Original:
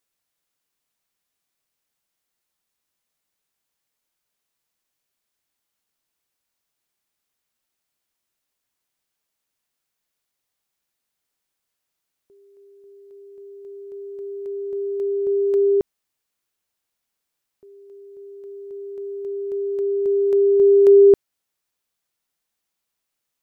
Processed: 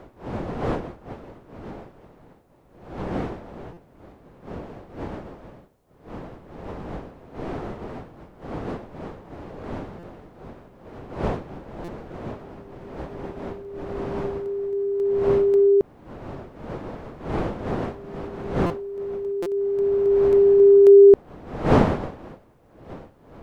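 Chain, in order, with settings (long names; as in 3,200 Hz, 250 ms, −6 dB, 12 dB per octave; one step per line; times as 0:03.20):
wind on the microphone 520 Hz −33 dBFS
buffer that repeats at 0:03.73/0:09.99/0:11.84/0:18.66/0:19.42, samples 256, times 6
level +1 dB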